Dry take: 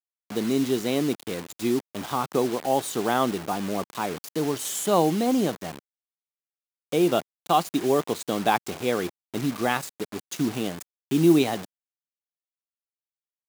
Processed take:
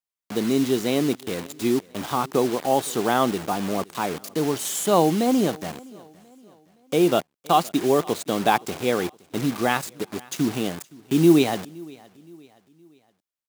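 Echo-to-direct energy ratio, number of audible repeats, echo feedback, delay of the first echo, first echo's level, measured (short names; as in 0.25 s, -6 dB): -22.5 dB, 2, 43%, 0.518 s, -23.5 dB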